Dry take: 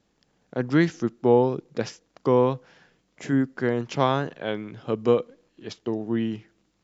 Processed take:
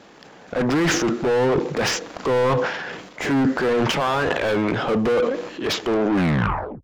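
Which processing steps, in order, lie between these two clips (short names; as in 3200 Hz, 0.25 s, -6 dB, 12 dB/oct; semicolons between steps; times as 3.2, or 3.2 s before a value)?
tape stop at the end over 0.77 s; limiter -14.5 dBFS, peak gain reduction 8 dB; overdrive pedal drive 33 dB, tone 1600 Hz, clips at -14.5 dBFS; transient shaper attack -2 dB, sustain +10 dB; gain +2 dB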